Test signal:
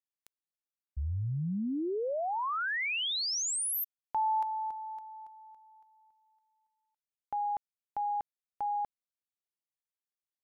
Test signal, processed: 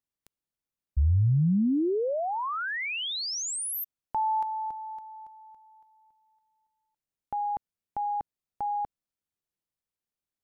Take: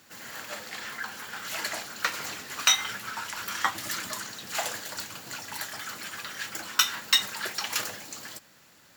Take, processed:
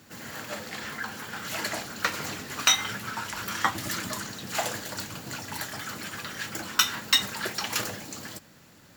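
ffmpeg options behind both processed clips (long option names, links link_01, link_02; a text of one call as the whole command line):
ffmpeg -i in.wav -af "lowshelf=frequency=430:gain=11.5" out.wav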